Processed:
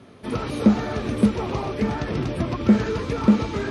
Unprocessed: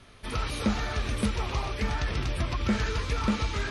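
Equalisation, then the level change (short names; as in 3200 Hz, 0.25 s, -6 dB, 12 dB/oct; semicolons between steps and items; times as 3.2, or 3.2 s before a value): HPF 200 Hz 12 dB/oct; tilt shelf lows +9.5 dB, about 730 Hz; +6.5 dB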